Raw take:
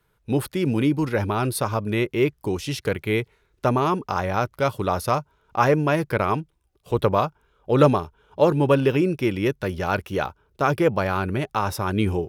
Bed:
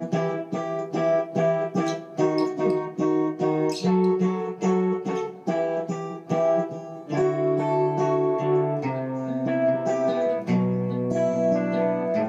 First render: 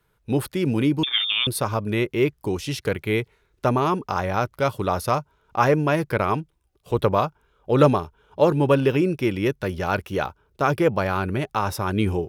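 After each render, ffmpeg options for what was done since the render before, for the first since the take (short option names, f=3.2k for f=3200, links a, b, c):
-filter_complex "[0:a]asettb=1/sr,asplit=3[a][b][c];[a]atrim=end=1.034[d];[b]atrim=start=1.03:end=1.47,asetpts=PTS-STARTPTS,afade=t=in:d=0.004:c=qsin,afade=t=out:st=0.436:d=0.004:c=qsin,lowpass=f=3.1k:t=q:w=0.5098,lowpass=f=3.1k:t=q:w=0.6013,lowpass=f=3.1k:t=q:w=0.9,lowpass=f=3.1k:t=q:w=2.563,afreqshift=-3700[e];[c]atrim=start=1.466[f];[d][e]acrossfade=d=0.004:c1=hsin:c2=qsin[g];[g][f]acrossfade=d=0.004:c1=qsin:c2=hsin"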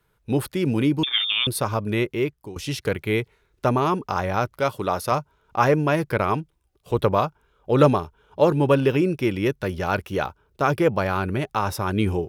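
-filter_complex "[0:a]asettb=1/sr,asplit=3[a][b][c];[a]atrim=end=4.584[d];[b]atrim=start=4.58:end=5.12,asetpts=PTS-STARTPTS,afade=t=in:d=0.004:c=qsin,afade=t=out:st=0.536:d=0.004:c=qsin,lowshelf=f=120:g=-9.5[e];[c]atrim=start=5.116[f];[d][e]acrossfade=d=0.004:c1=hsin:c2=qsin[g];[g][f]acrossfade=d=0.004:c1=qsin:c2=hsin,asplit=2[h][i];[h]atrim=end=2.56,asetpts=PTS-STARTPTS,afade=t=out:st=2.02:d=0.54:silence=0.16788[j];[i]atrim=start=2.56,asetpts=PTS-STARTPTS,afade=t=in:d=0.004:c=hsin:silence=0.16788[k];[j][k]concat=n=2:v=0:a=1"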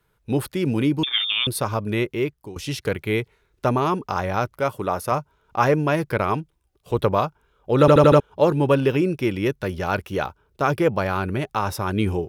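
-filter_complex "[0:a]asettb=1/sr,asplit=3[a][b][c];[a]atrim=end=4.554[d];[b]atrim=start=4.55:end=5.19,asetpts=PTS-STARTPTS,afade=t=in:d=0.004:c=qsin,afade=t=out:st=0.636:d=0.004:c=qsin,equalizer=f=4.1k:w=1.5:g=-7.5[e];[c]atrim=start=5.186[f];[d][e]acrossfade=d=0.004:c1=hsin:c2=qsin[g];[g][f]acrossfade=d=0.004:c1=qsin:c2=hsin,asplit=6[h][i][j][k][l][m];[h]atrim=end=7.882[n];[i]atrim=start=7.798:end=7.882[o];[j]atrim=start=7.798:end=7.882[p];[k]atrim=start=7.798:end=7.882[q];[l]atrim=start=7.798:end=7.882[r];[m]atrim=start=8.198[s];[n][o]acrossfade=d=0.004:c1=hsin:c2=hsin[t];[t][p]acrossfade=d=0.004:c1=hsin:c2=hsin[u];[u][q]acrossfade=d=0.004:c1=hsin:c2=hsin[v];[v][r]acrossfade=d=0.004:c1=hsin:c2=hsin[w];[w][s]acrossfade=d=0.004:c1=hsin:c2=hsin"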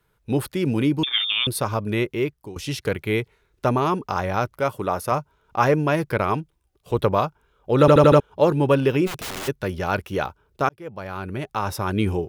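-filter_complex "[0:a]asplit=3[a][b][c];[a]afade=t=out:st=9.06:d=0.02[d];[b]aeval=exprs='(mod(21.1*val(0)+1,2)-1)/21.1':c=same,afade=t=in:st=9.06:d=0.02,afade=t=out:st=9.47:d=0.02[e];[c]afade=t=in:st=9.47:d=0.02[f];[d][e][f]amix=inputs=3:normalize=0,asplit=2[g][h];[g]atrim=end=10.69,asetpts=PTS-STARTPTS,afade=t=out:st=10.686:d=0.004:c=hsin[i];[h]atrim=start=10.69,asetpts=PTS-STARTPTS,afade=t=in:d=1.12[j];[i][j]concat=n=2:v=0:a=1"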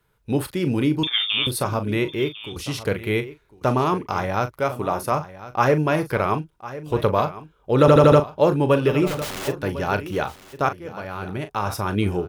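-filter_complex "[0:a]asplit=2[a][b];[b]adelay=39,volume=-11dB[c];[a][c]amix=inputs=2:normalize=0,aecho=1:1:1052:0.168"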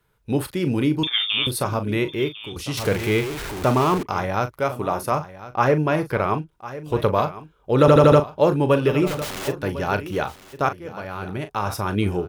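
-filter_complex "[0:a]asettb=1/sr,asplit=3[a][b][c];[a]atrim=end=2.774[d];[b]atrim=start=2.77:end=4.03,asetpts=PTS-STARTPTS,afade=t=in:d=0.004:c=qsin,afade=t=out:st=1.256:d=0.004:c=qsin,aeval=exprs='val(0)+0.5*0.0562*sgn(val(0))':c=same[e];[c]atrim=start=4.026[f];[d][e]acrossfade=d=0.004:c1=hsin:c2=qsin[g];[g][f]acrossfade=d=0.004:c1=qsin:c2=hsin,asettb=1/sr,asplit=3[h][i][j];[h]atrim=end=5.474[k];[i]atrim=start=5.47:end=6.51,asetpts=PTS-STARTPTS,afade=t=in:d=0.004:c=qsin,afade=t=out:st=1.036:d=0.004:c=qsin,highshelf=f=4.3k:g=-5.5[l];[j]atrim=start=6.506[m];[k][l]acrossfade=d=0.004:c1=hsin:c2=qsin[n];[n][m]acrossfade=d=0.004:c1=qsin:c2=hsin"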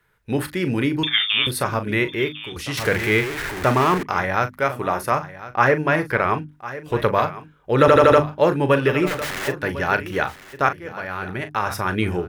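-af "equalizer=f=1.8k:t=o:w=0.76:g=10.5,bandreject=f=50:t=h:w=6,bandreject=f=100:t=h:w=6,bandreject=f=150:t=h:w=6,bandreject=f=200:t=h:w=6,bandreject=f=250:t=h:w=6,bandreject=f=300:t=h:w=6"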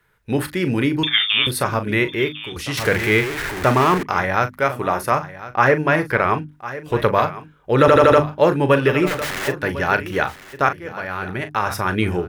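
-af "volume=2dB,alimiter=limit=-2dB:level=0:latency=1"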